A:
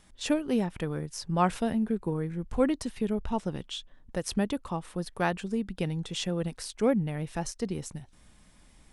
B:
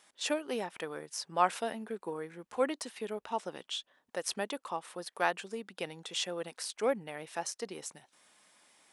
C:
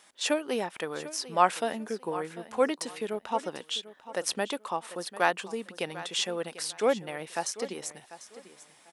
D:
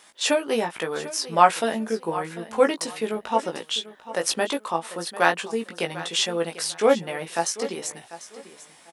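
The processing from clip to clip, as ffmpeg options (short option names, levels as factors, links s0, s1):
-af "highpass=530"
-af "aecho=1:1:745|1490:0.168|0.0403,volume=1.78"
-filter_complex "[0:a]asplit=2[s0][s1];[s1]adelay=18,volume=0.596[s2];[s0][s2]amix=inputs=2:normalize=0,volume=1.78"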